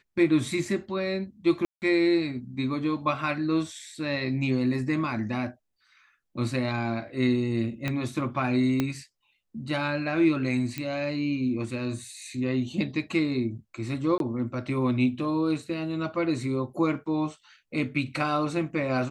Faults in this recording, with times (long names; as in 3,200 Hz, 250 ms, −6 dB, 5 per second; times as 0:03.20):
0:01.65–0:01.82: drop-out 169 ms
0:07.88: click −15 dBFS
0:08.80: click −12 dBFS
0:10.78: click −17 dBFS
0:14.18–0:14.20: drop-out 22 ms